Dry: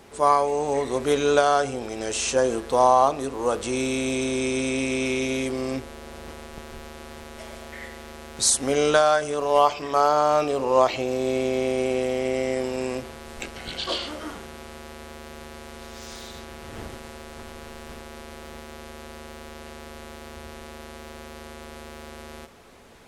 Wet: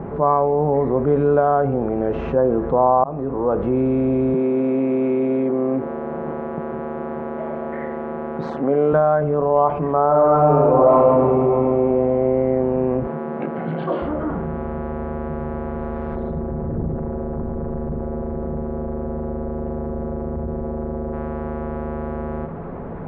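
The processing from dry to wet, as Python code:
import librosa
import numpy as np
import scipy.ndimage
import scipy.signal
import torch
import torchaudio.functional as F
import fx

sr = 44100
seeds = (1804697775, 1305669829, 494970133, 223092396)

y = fx.highpass(x, sr, hz=220.0, slope=12, at=(4.34, 8.93))
y = fx.reverb_throw(y, sr, start_s=10.07, length_s=1.08, rt60_s=2.7, drr_db=-6.0)
y = fx.highpass(y, sr, hz=160.0, slope=24, at=(13.07, 14.02))
y = fx.envelope_sharpen(y, sr, power=2.0, at=(16.15, 21.14))
y = fx.edit(y, sr, fx.fade_in_span(start_s=3.04, length_s=0.54), tone=tone)
y = scipy.signal.sosfilt(scipy.signal.bessel(4, 870.0, 'lowpass', norm='mag', fs=sr, output='sos'), y)
y = fx.peak_eq(y, sr, hz=160.0, db=13.0, octaves=0.41)
y = fx.env_flatten(y, sr, amount_pct=50)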